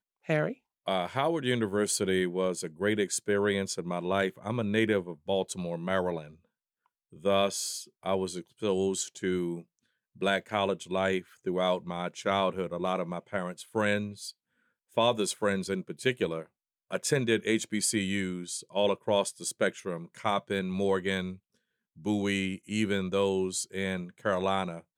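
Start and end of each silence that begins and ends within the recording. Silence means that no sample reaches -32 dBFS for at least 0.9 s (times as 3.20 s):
6.22–7.25 s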